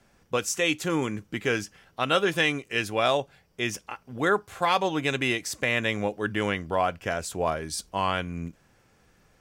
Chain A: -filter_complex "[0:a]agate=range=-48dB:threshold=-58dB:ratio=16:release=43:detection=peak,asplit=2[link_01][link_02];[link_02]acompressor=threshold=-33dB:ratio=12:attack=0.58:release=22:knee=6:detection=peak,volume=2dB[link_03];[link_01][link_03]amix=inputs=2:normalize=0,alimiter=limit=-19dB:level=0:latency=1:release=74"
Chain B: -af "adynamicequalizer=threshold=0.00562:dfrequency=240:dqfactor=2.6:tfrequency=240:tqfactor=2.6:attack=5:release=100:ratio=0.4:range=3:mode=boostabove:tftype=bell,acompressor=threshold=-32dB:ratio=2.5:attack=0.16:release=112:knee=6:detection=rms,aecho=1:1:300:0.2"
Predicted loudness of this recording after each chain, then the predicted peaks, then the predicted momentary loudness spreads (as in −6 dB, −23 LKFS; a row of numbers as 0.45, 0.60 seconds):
−30.0, −36.5 LKFS; −19.0, −22.0 dBFS; 5, 7 LU